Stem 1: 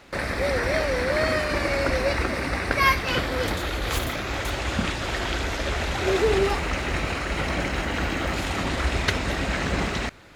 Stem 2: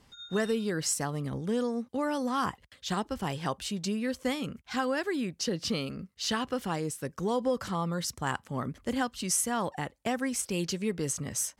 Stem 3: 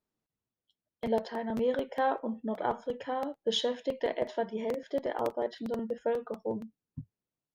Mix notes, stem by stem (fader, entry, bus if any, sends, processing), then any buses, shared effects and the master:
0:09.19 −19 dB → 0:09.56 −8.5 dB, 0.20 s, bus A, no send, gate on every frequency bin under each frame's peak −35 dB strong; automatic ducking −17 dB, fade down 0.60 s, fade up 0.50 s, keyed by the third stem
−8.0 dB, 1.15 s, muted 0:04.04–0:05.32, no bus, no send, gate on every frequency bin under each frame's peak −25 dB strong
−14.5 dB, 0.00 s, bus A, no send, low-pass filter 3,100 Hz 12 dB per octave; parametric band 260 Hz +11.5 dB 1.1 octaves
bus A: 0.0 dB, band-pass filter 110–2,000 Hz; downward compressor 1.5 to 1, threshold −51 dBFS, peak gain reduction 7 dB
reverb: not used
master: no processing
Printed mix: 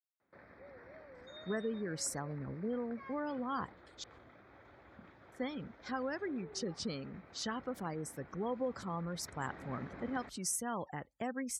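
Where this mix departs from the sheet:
stem 1 −19.0 dB → −28.5 dB
stem 3: muted
master: extra parametric band 2,800 Hz −12 dB 0.24 octaves

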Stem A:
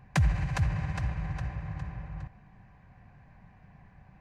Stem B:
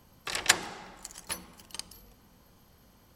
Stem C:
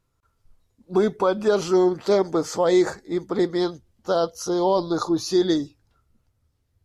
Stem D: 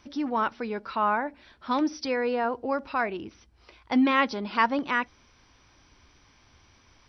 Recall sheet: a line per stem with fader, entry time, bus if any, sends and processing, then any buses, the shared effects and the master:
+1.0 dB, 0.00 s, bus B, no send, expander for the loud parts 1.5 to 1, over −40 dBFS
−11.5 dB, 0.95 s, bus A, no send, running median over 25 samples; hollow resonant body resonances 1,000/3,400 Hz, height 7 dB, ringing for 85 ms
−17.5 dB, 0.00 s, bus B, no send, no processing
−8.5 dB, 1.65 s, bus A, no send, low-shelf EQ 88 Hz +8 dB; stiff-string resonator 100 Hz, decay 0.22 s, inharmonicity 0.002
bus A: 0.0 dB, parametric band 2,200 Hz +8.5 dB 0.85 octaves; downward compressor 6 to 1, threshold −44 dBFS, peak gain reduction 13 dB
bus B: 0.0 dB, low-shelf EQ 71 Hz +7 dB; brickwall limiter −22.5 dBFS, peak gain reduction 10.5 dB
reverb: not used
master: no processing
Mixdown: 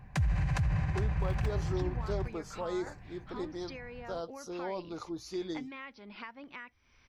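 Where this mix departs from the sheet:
stem A: missing expander for the loud parts 1.5 to 1, over −40 dBFS
stem D: missing stiff-string resonator 100 Hz, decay 0.22 s, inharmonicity 0.002

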